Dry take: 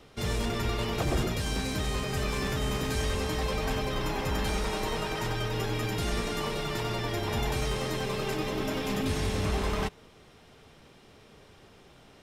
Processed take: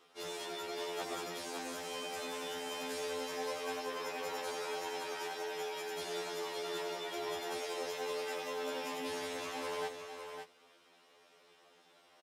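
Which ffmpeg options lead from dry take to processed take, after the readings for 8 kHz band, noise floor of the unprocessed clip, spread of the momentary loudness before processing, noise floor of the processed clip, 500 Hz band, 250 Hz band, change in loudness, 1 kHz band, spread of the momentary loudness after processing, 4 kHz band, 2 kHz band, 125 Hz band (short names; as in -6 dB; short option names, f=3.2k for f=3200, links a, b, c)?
-6.5 dB, -56 dBFS, 2 LU, -65 dBFS, -6.0 dB, -15.0 dB, -9.0 dB, -6.0 dB, 3 LU, -7.5 dB, -7.5 dB, -31.0 dB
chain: -af "highpass=450,aecho=1:1:556:0.447,afftfilt=real='re*2*eq(mod(b,4),0)':imag='im*2*eq(mod(b,4),0)':win_size=2048:overlap=0.75,volume=-5dB"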